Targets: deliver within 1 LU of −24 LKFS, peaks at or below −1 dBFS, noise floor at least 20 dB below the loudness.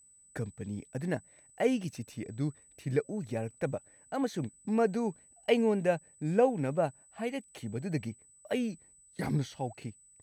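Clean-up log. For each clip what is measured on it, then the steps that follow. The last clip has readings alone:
interfering tone 8,000 Hz; level of the tone −58 dBFS; integrated loudness −33.5 LKFS; sample peak −13.5 dBFS; target loudness −24.0 LKFS
→ notch filter 8,000 Hz, Q 30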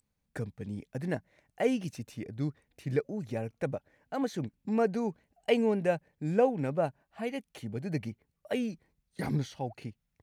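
interfering tone none found; integrated loudness −33.5 LKFS; sample peak −13.5 dBFS; target loudness −24.0 LKFS
→ level +9.5 dB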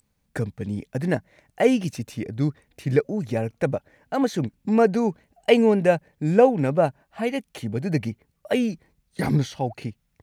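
integrated loudness −24.0 LKFS; sample peak −4.0 dBFS; background noise floor −72 dBFS

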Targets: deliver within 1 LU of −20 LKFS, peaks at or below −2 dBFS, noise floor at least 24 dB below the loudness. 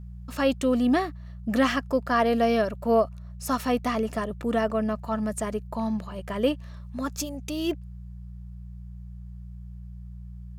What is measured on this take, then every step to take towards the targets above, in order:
mains hum 60 Hz; hum harmonics up to 180 Hz; level of the hum −38 dBFS; integrated loudness −26.5 LKFS; sample peak −10.5 dBFS; target loudness −20.0 LKFS
→ hum removal 60 Hz, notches 3
level +6.5 dB

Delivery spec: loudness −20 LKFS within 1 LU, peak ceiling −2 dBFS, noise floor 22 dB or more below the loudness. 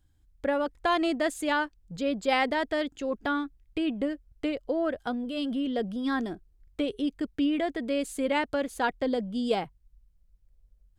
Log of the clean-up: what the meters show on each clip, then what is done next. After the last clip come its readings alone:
integrated loudness −29.5 LKFS; sample peak −13.5 dBFS; target loudness −20.0 LKFS
→ level +9.5 dB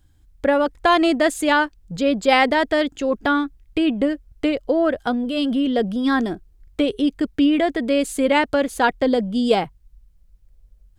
integrated loudness −20.0 LKFS; sample peak −4.0 dBFS; background noise floor −55 dBFS

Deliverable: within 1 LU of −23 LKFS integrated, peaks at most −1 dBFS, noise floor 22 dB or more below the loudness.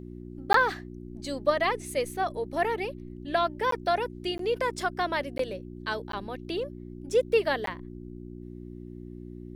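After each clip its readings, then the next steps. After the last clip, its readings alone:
number of dropouts 6; longest dropout 13 ms; mains hum 60 Hz; hum harmonics up to 360 Hz; level of the hum −40 dBFS; integrated loudness −29.0 LKFS; sample peak −7.0 dBFS; target loudness −23.0 LKFS
→ repair the gap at 0:00.53/0:03.71/0:04.38/0:05.38/0:06.12/0:07.66, 13 ms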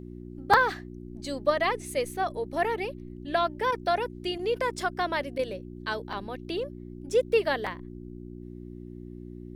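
number of dropouts 0; mains hum 60 Hz; hum harmonics up to 360 Hz; level of the hum −40 dBFS
→ hum removal 60 Hz, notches 6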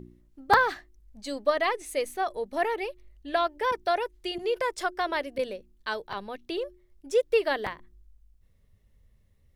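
mains hum none found; integrated loudness −29.0 LKFS; sample peak −4.5 dBFS; target loudness −23.0 LKFS
→ level +6 dB
brickwall limiter −1 dBFS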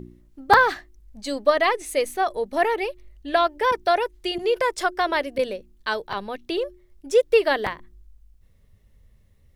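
integrated loudness −23.0 LKFS; sample peak −1.0 dBFS; background noise floor −58 dBFS

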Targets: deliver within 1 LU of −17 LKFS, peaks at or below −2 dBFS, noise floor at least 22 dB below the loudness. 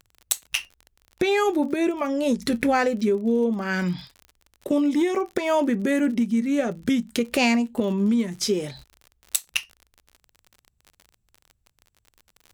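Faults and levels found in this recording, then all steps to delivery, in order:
crackle rate 46 per second; integrated loudness −24.0 LKFS; sample peak −5.0 dBFS; target loudness −17.0 LKFS
→ click removal
level +7 dB
brickwall limiter −2 dBFS

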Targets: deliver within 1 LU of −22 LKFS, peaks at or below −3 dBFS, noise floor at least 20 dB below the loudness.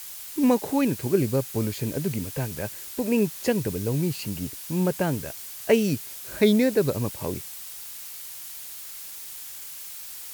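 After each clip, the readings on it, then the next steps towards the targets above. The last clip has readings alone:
background noise floor −39 dBFS; target noise floor −47 dBFS; integrated loudness −27.0 LKFS; sample peak −7.0 dBFS; target loudness −22.0 LKFS
→ broadband denoise 8 dB, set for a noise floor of −39 dBFS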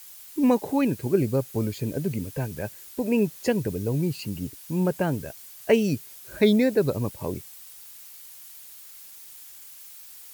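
background noise floor −46 dBFS; integrated loudness −26.0 LKFS; sample peak −7.5 dBFS; target loudness −22.0 LKFS
→ level +4 dB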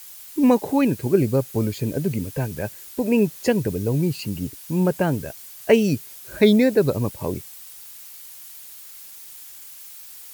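integrated loudness −22.0 LKFS; sample peak −3.5 dBFS; background noise floor −42 dBFS

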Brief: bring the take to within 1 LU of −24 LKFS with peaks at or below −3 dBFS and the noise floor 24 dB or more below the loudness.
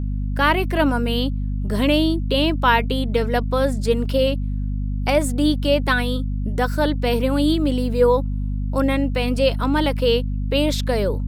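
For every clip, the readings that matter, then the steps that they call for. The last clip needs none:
mains hum 50 Hz; hum harmonics up to 250 Hz; level of the hum −21 dBFS; integrated loudness −20.5 LKFS; sample peak −3.5 dBFS; target loudness −24.0 LKFS
→ mains-hum notches 50/100/150/200/250 Hz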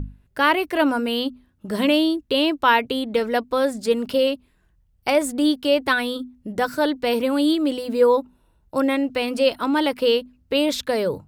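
mains hum none found; integrated loudness −21.5 LKFS; sample peak −4.5 dBFS; target loudness −24.0 LKFS
→ level −2.5 dB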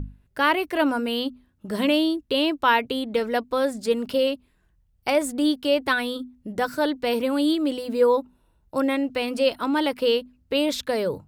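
integrated loudness −24.0 LKFS; sample peak −7.0 dBFS; background noise floor −65 dBFS

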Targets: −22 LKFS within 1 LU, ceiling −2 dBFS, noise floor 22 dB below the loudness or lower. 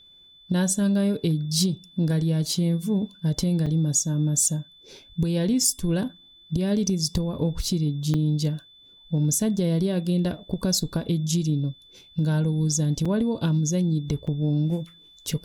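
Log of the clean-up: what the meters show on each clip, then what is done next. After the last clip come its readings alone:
number of dropouts 4; longest dropout 5.1 ms; interfering tone 3,500 Hz; level of the tone −50 dBFS; integrated loudness −24.5 LKFS; sample peak −10.0 dBFS; target loudness −22.0 LKFS
→ repair the gap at 0:03.66/0:08.14/0:13.05/0:14.27, 5.1 ms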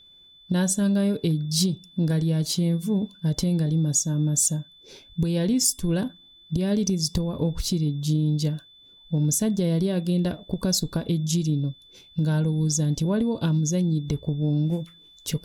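number of dropouts 0; interfering tone 3,500 Hz; level of the tone −50 dBFS
→ notch filter 3,500 Hz, Q 30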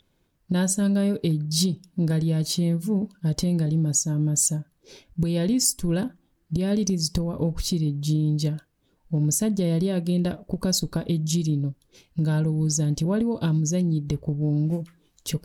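interfering tone none found; integrated loudness −24.5 LKFS; sample peak −10.0 dBFS; target loudness −22.0 LKFS
→ level +2.5 dB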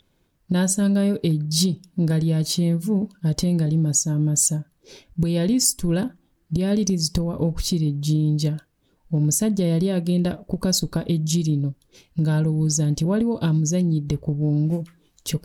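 integrated loudness −22.0 LKFS; sample peak −7.5 dBFS; background noise floor −66 dBFS

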